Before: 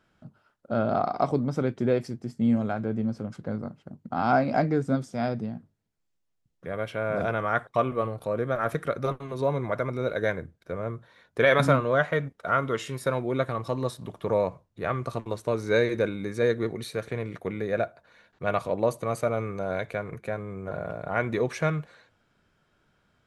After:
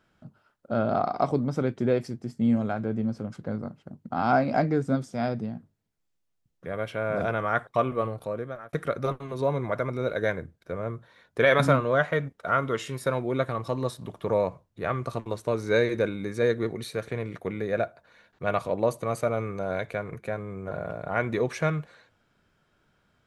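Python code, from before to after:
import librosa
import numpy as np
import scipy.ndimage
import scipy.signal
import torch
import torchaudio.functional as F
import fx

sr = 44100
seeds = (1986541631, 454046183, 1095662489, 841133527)

y = fx.edit(x, sr, fx.fade_out_span(start_s=8.13, length_s=0.6), tone=tone)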